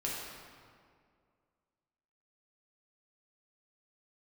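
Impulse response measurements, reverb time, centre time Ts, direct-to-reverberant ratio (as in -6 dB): 2.2 s, 0.106 s, -5.5 dB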